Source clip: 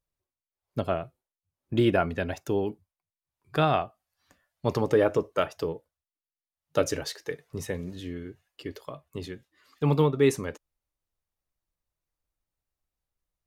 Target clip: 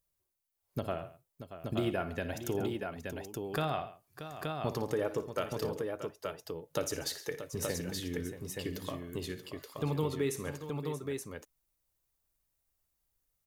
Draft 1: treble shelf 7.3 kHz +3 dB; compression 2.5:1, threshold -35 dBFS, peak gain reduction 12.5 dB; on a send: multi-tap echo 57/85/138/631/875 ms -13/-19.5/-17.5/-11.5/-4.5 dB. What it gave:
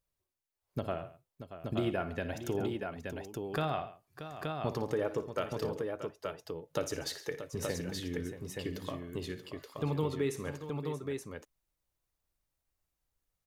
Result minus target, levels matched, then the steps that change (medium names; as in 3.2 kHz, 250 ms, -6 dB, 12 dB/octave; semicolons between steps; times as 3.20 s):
8 kHz band -4.0 dB
change: treble shelf 7.3 kHz +12.5 dB